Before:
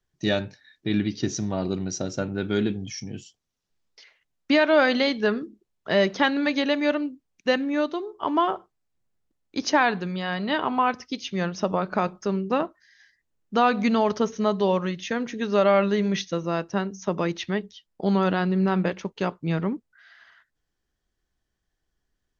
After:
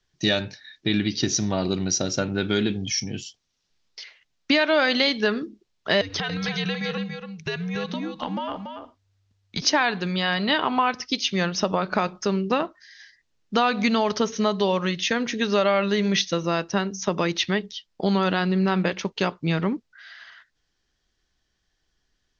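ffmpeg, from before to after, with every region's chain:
-filter_complex "[0:a]asettb=1/sr,asplit=3[a][b][c];[a]atrim=end=6.014[d];[b]atrim=start=6.01:end=9.62,asetpts=PTS-STARTPTS,afade=t=in:d=0.004:c=qsin,afade=t=out:st=3.606:d=0.004:c=qsin,afreqshift=-98,acompressor=threshold=-30dB:ratio=8:attack=3.2:release=140:knee=1:detection=peak,aecho=1:1:284:0.447,atrim=end_sample=159201[e];[c]atrim=start=9.616[f];[d][e]acrossfade=d=0.004:c1=hsin:c2=qsin[g];[g][f]acrossfade=d=0.004:c1=qsin:c2=hsin,lowpass=f=5.9k:w=0.5412,lowpass=f=5.9k:w=1.3066,highshelf=f=2.3k:g=11.5,acompressor=threshold=-23dB:ratio=2.5,volume=3.5dB"

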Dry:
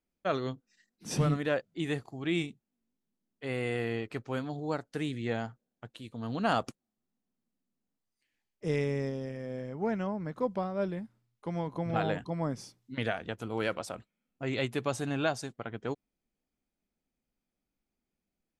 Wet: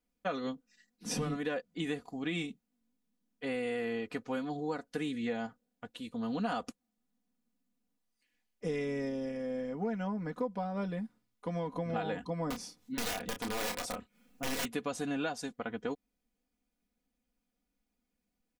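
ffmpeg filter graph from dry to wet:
-filter_complex "[0:a]asettb=1/sr,asplit=3[a][b][c];[a]atrim=end=12.504[d];[b]atrim=start=12.5:end=14.65,asetpts=PTS-STARTPTS,afade=t=in:d=0.004:c=qsin,afade=t=out:st=2.146:d=0.004:c=qsin,acompressor=mode=upward:threshold=-55dB:ratio=2.5:attack=3.2:release=140:knee=2.83:detection=peak,aeval=exprs='(mod(25.1*val(0)+1,2)-1)/25.1':c=same,asplit=2[e][f];[f]adelay=30,volume=-7dB[g];[e][g]amix=inputs=2:normalize=0,atrim=end_sample=94815[h];[c]atrim=start=14.646[i];[d][h]acrossfade=d=0.004:c1=hsin:c2=qsin[j];[j][i]acrossfade=d=0.004:c1=qsin:c2=hsin,aecho=1:1:4.1:0.77,acompressor=threshold=-32dB:ratio=4"

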